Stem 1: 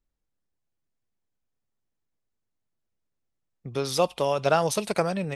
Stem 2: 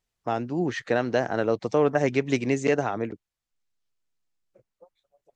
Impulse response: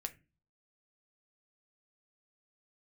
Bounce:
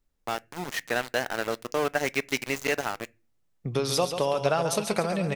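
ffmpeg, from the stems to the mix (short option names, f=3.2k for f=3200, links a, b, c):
-filter_complex "[0:a]acompressor=threshold=-31dB:ratio=2.5,volume=2dB,asplit=3[a][b][c];[b]volume=-3dB[d];[c]volume=-5dB[e];[1:a]tiltshelf=f=790:g=-7.5,aeval=exprs='val(0)*gte(abs(val(0)),0.0473)':c=same,volume=-5dB,asplit=2[f][g];[g]volume=-7dB[h];[2:a]atrim=start_sample=2205[i];[d][h]amix=inputs=2:normalize=0[j];[j][i]afir=irnorm=-1:irlink=0[k];[e]aecho=0:1:138|276|414|552|690:1|0.37|0.137|0.0507|0.0187[l];[a][f][k][l]amix=inputs=4:normalize=0"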